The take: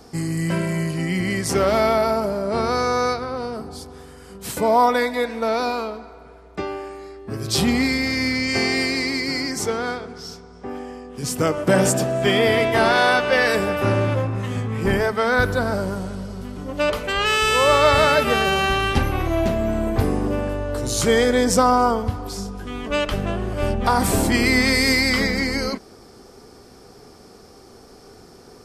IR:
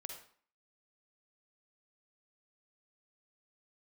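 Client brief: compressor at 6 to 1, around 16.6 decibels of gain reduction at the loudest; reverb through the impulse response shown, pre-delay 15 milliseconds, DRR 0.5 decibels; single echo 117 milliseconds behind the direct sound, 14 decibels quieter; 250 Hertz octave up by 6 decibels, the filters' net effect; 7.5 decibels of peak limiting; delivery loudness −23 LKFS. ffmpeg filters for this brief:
-filter_complex "[0:a]equalizer=frequency=250:width_type=o:gain=7,acompressor=threshold=-29dB:ratio=6,alimiter=limit=-24dB:level=0:latency=1,aecho=1:1:117:0.2,asplit=2[link_01][link_02];[1:a]atrim=start_sample=2205,adelay=15[link_03];[link_02][link_03]afir=irnorm=-1:irlink=0,volume=3dB[link_04];[link_01][link_04]amix=inputs=2:normalize=0,volume=8dB"

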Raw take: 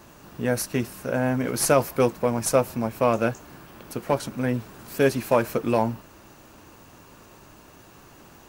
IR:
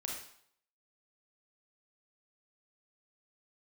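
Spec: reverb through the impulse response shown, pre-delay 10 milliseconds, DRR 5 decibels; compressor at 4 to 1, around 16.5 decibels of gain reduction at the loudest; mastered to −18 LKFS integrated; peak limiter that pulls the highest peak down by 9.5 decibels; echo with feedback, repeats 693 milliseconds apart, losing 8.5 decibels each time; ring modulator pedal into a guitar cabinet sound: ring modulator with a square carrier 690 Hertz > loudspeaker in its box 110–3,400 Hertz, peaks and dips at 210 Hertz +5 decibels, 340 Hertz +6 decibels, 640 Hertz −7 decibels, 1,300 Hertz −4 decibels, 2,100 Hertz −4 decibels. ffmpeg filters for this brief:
-filter_complex "[0:a]acompressor=threshold=-35dB:ratio=4,alimiter=level_in=5dB:limit=-24dB:level=0:latency=1,volume=-5dB,aecho=1:1:693|1386|2079|2772:0.376|0.143|0.0543|0.0206,asplit=2[link_01][link_02];[1:a]atrim=start_sample=2205,adelay=10[link_03];[link_02][link_03]afir=irnorm=-1:irlink=0,volume=-5.5dB[link_04];[link_01][link_04]amix=inputs=2:normalize=0,aeval=exprs='val(0)*sgn(sin(2*PI*690*n/s))':channel_layout=same,highpass=110,equalizer=frequency=210:width_type=q:width=4:gain=5,equalizer=frequency=340:width_type=q:width=4:gain=6,equalizer=frequency=640:width_type=q:width=4:gain=-7,equalizer=frequency=1300:width_type=q:width=4:gain=-4,equalizer=frequency=2100:width_type=q:width=4:gain=-4,lowpass=frequency=3400:width=0.5412,lowpass=frequency=3400:width=1.3066,volume=23.5dB"

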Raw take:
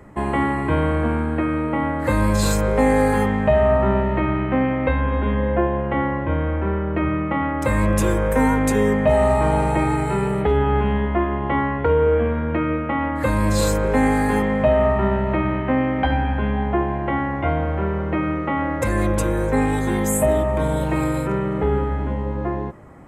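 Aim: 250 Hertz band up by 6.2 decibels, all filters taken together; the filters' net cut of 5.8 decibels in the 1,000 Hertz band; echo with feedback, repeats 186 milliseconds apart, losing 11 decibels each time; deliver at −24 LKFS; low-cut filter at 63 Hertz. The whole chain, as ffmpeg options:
ffmpeg -i in.wav -af "highpass=63,equalizer=frequency=250:width_type=o:gain=8,equalizer=frequency=1000:width_type=o:gain=-8,aecho=1:1:186|372|558:0.282|0.0789|0.0221,volume=-5.5dB" out.wav

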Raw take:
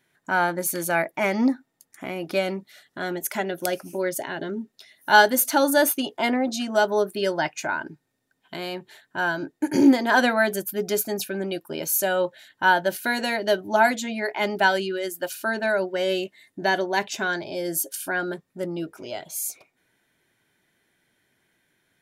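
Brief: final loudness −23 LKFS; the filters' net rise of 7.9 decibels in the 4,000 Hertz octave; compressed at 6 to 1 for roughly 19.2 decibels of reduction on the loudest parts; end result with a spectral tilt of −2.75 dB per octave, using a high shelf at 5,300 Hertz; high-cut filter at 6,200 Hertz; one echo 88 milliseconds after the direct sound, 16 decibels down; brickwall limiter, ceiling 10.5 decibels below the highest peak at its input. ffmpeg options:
ffmpeg -i in.wav -af "lowpass=6200,equalizer=frequency=4000:width_type=o:gain=9,highshelf=frequency=5300:gain=4.5,acompressor=threshold=-30dB:ratio=6,alimiter=limit=-23dB:level=0:latency=1,aecho=1:1:88:0.158,volume=11.5dB" out.wav

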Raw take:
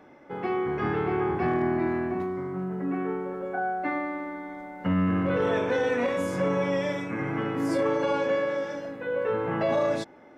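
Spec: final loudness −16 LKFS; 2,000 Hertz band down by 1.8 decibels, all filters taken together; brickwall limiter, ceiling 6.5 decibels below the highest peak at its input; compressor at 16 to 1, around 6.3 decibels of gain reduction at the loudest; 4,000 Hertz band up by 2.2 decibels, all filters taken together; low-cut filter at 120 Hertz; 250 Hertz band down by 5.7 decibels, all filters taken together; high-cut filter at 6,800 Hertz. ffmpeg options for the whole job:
ffmpeg -i in.wav -af "highpass=120,lowpass=6800,equalizer=frequency=250:width_type=o:gain=-8,equalizer=frequency=2000:width_type=o:gain=-3,equalizer=frequency=4000:width_type=o:gain=4.5,acompressor=threshold=-29dB:ratio=16,volume=20.5dB,alimiter=limit=-7.5dB:level=0:latency=1" out.wav

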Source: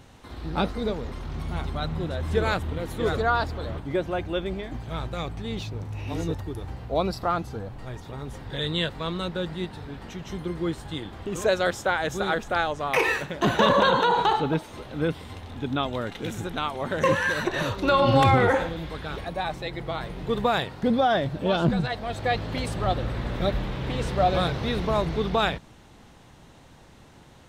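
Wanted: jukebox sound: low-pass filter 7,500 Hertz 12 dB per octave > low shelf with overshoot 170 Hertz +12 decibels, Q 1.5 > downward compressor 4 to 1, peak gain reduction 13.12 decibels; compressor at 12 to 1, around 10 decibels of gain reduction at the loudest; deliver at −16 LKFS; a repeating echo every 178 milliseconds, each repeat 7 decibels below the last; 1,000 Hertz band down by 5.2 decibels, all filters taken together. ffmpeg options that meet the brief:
ffmpeg -i in.wav -af "equalizer=frequency=1000:width_type=o:gain=-6.5,acompressor=threshold=-26dB:ratio=12,lowpass=7500,lowshelf=frequency=170:width_type=q:width=1.5:gain=12,aecho=1:1:178|356|534|712|890:0.447|0.201|0.0905|0.0407|0.0183,acompressor=threshold=-28dB:ratio=4,volume=16dB" out.wav

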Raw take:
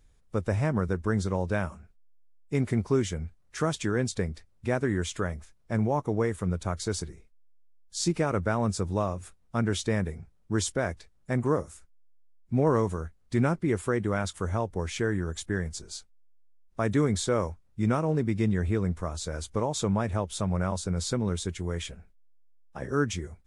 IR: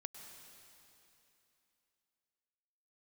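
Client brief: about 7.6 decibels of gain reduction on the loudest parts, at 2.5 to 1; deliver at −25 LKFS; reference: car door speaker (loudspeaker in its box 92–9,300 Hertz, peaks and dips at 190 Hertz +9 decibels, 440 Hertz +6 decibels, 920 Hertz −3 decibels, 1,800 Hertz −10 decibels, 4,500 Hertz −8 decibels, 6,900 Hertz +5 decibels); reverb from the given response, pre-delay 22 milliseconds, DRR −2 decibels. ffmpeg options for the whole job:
-filter_complex "[0:a]acompressor=threshold=-32dB:ratio=2.5,asplit=2[link_01][link_02];[1:a]atrim=start_sample=2205,adelay=22[link_03];[link_02][link_03]afir=irnorm=-1:irlink=0,volume=6dB[link_04];[link_01][link_04]amix=inputs=2:normalize=0,highpass=92,equalizer=frequency=190:width_type=q:width=4:gain=9,equalizer=frequency=440:width_type=q:width=4:gain=6,equalizer=frequency=920:width_type=q:width=4:gain=-3,equalizer=frequency=1800:width_type=q:width=4:gain=-10,equalizer=frequency=4500:width_type=q:width=4:gain=-8,equalizer=frequency=6900:width_type=q:width=4:gain=5,lowpass=frequency=9300:width=0.5412,lowpass=frequency=9300:width=1.3066,volume=4dB"

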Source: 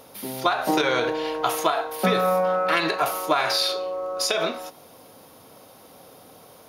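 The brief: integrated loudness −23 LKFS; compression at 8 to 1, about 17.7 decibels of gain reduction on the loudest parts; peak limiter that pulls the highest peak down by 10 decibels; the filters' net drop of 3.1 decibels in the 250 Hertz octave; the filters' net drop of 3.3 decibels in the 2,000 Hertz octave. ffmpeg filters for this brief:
ffmpeg -i in.wav -af "equalizer=frequency=250:width_type=o:gain=-4.5,equalizer=frequency=2000:width_type=o:gain=-4.5,acompressor=threshold=-37dB:ratio=8,volume=19dB,alimiter=limit=-12dB:level=0:latency=1" out.wav

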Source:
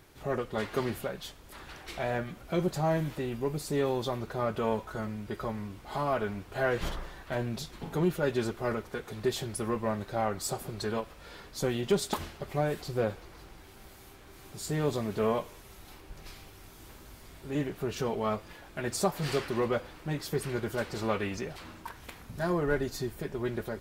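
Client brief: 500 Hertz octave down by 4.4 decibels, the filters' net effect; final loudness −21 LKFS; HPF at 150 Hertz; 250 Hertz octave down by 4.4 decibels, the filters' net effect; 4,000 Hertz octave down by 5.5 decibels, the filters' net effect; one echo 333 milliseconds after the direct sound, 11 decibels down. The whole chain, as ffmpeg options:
ffmpeg -i in.wav -af "highpass=150,equalizer=frequency=250:width_type=o:gain=-3.5,equalizer=frequency=500:width_type=o:gain=-4.5,equalizer=frequency=4000:width_type=o:gain=-7,aecho=1:1:333:0.282,volume=15.5dB" out.wav

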